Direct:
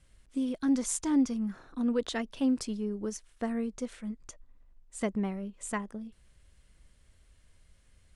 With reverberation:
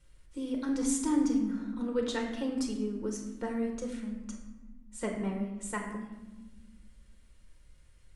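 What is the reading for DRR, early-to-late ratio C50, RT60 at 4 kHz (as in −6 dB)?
0.5 dB, 5.5 dB, 0.70 s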